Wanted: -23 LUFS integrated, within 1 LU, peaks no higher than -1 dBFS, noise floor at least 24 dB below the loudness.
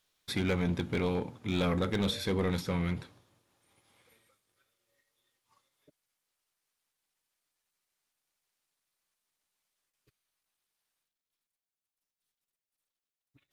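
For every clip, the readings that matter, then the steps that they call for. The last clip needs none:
clipped 0.7%; flat tops at -23.5 dBFS; loudness -32.0 LUFS; peak -23.5 dBFS; loudness target -23.0 LUFS
-> clip repair -23.5 dBFS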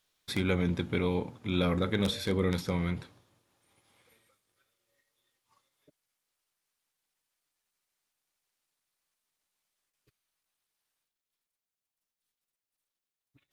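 clipped 0.0%; loudness -31.0 LUFS; peak -14.5 dBFS; loudness target -23.0 LUFS
-> gain +8 dB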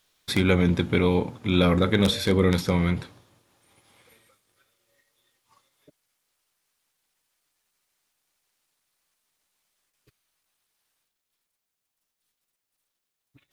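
loudness -23.0 LUFS; peak -6.5 dBFS; noise floor -83 dBFS

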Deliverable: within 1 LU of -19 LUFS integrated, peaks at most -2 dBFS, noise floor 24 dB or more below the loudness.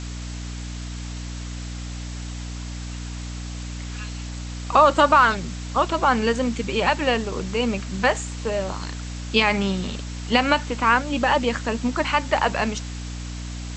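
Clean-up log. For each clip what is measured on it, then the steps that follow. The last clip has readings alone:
hum 60 Hz; harmonics up to 300 Hz; hum level -30 dBFS; noise floor -32 dBFS; noise floor target -46 dBFS; loudness -21.5 LUFS; peak -2.5 dBFS; loudness target -19.0 LUFS
-> notches 60/120/180/240/300 Hz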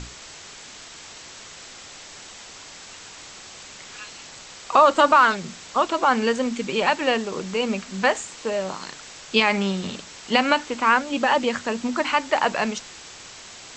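hum none; noise floor -42 dBFS; noise floor target -46 dBFS
-> denoiser 6 dB, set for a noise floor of -42 dBFS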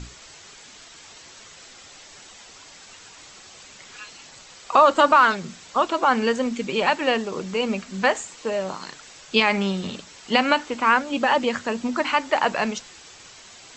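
noise floor -46 dBFS; loudness -21.5 LUFS; peak -2.5 dBFS; loudness target -19.0 LUFS
-> gain +2.5 dB; limiter -2 dBFS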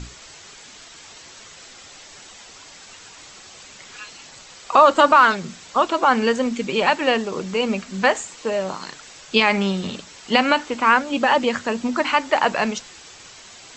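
loudness -19.0 LUFS; peak -2.0 dBFS; noise floor -44 dBFS

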